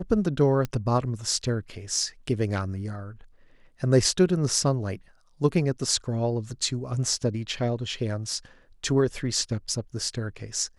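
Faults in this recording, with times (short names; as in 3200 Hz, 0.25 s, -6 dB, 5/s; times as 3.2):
0.65 pop -16 dBFS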